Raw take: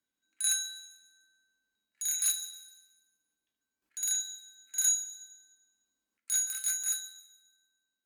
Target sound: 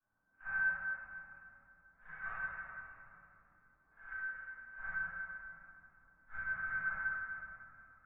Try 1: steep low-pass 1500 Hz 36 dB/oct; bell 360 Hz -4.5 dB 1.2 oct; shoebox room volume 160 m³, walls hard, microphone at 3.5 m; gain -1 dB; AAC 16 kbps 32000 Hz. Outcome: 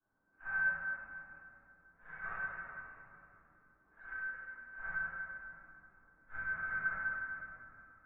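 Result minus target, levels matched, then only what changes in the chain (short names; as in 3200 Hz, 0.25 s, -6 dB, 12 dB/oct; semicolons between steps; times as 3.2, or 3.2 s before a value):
500 Hz band +4.0 dB
change: bell 360 Hz -14.5 dB 1.2 oct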